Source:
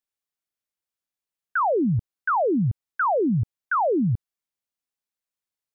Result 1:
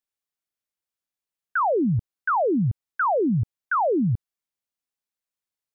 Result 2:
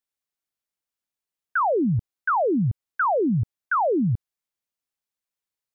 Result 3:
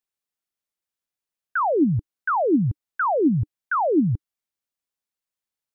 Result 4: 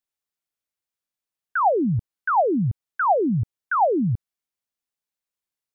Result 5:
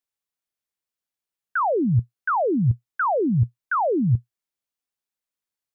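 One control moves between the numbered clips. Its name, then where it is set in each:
dynamic bell, frequency: 5.1 kHz, 2 kHz, 300 Hz, 770 Hz, 120 Hz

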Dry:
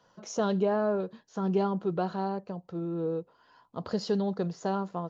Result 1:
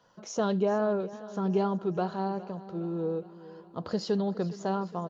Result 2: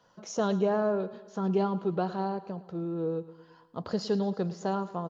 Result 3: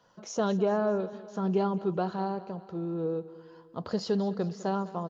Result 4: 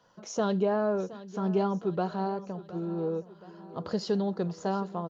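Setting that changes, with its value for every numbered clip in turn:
feedback delay, time: 412 ms, 110 ms, 203 ms, 719 ms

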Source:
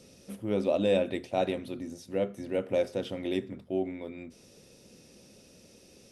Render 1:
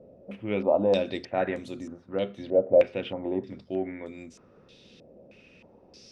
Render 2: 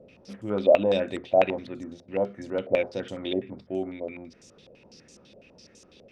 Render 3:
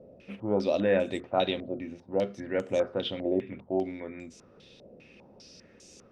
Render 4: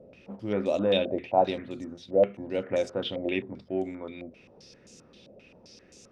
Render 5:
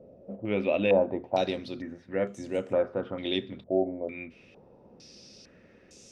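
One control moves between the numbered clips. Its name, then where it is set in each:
step-sequenced low-pass, rate: 3.2 Hz, 12 Hz, 5 Hz, 7.6 Hz, 2.2 Hz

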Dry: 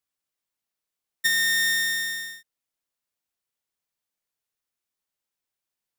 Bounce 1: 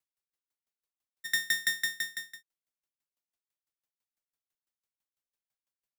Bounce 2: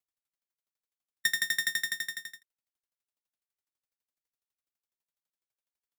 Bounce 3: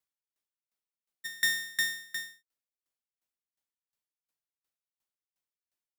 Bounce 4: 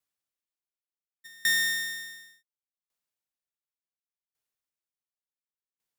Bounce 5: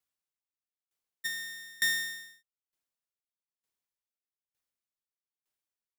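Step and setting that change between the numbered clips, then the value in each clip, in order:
sawtooth tremolo in dB, rate: 6 Hz, 12 Hz, 2.8 Hz, 0.69 Hz, 1.1 Hz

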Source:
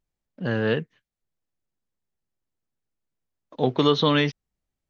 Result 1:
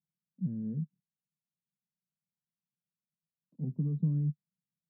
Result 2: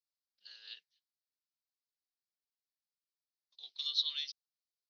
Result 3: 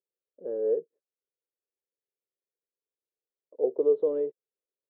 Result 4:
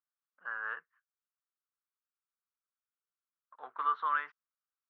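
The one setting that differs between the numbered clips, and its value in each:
Butterworth band-pass, frequency: 170 Hz, 4.6 kHz, 460 Hz, 1.3 kHz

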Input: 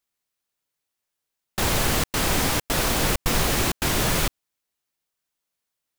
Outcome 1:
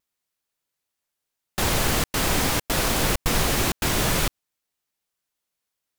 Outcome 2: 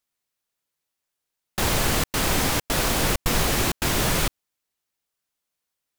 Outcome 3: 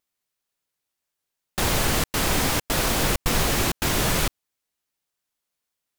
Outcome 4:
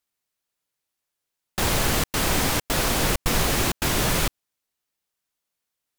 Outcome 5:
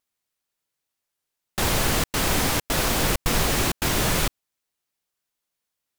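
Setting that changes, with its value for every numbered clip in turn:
vibrato, rate: 0.52 Hz, 15 Hz, 1 Hz, 9.3 Hz, 1.5 Hz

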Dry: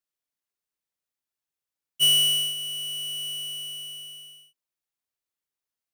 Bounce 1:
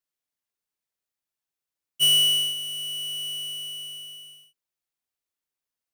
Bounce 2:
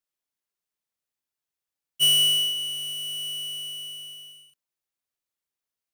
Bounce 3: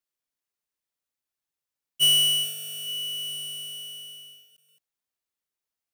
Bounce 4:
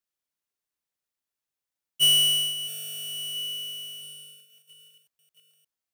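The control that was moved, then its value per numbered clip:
bit-crushed delay, time: 102 ms, 182 ms, 429 ms, 669 ms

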